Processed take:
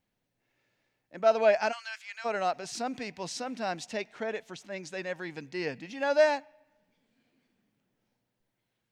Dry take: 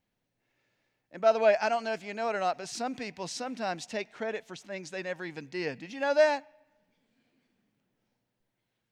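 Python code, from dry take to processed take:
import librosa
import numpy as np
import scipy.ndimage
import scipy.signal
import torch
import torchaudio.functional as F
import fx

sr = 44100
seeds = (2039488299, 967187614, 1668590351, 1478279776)

y = fx.highpass(x, sr, hz=1300.0, slope=24, at=(1.71, 2.24), fade=0.02)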